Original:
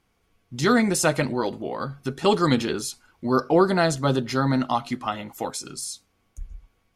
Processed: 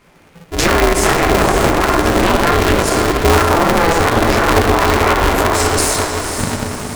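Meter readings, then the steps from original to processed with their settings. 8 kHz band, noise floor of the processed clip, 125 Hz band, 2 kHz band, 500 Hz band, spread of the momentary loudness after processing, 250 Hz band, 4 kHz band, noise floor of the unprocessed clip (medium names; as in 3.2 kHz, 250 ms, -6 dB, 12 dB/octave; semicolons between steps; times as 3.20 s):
+12.5 dB, -46 dBFS, +10.0 dB, +14.0 dB, +10.0 dB, 6 LU, +7.0 dB, +12.5 dB, -69 dBFS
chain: chorus voices 4, 0.6 Hz, delay 13 ms, depth 3.7 ms; band-stop 1.1 kHz; simulated room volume 300 m³, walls mixed, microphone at 1.5 m; compression 4:1, threshold -31 dBFS, peak gain reduction 17.5 dB; Chebyshev shaper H 4 -10 dB, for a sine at -18.5 dBFS; ten-band graphic EQ 125 Hz +6 dB, 250 Hz +7 dB, 500 Hz +4 dB, 1 kHz +8 dB, 2 kHz +9 dB, 8 kHz +6 dB; on a send: echo that smears into a reverb 513 ms, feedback 49%, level -7.5 dB; on the sum: loudness maximiser +13.5 dB; polarity switched at an audio rate 170 Hz; trim -1 dB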